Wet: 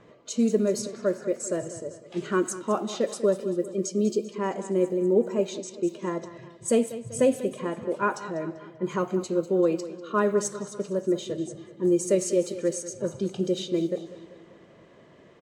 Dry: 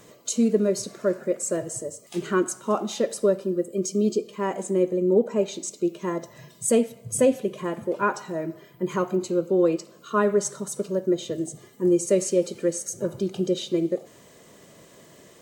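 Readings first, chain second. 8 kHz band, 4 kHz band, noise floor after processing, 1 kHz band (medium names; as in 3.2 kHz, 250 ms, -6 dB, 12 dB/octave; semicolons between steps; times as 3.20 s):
-4.0 dB, -2.0 dB, -53 dBFS, -2.0 dB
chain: feedback delay 195 ms, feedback 52%, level -14.5 dB; level-controlled noise filter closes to 2.3 kHz, open at -19.5 dBFS; trim -2 dB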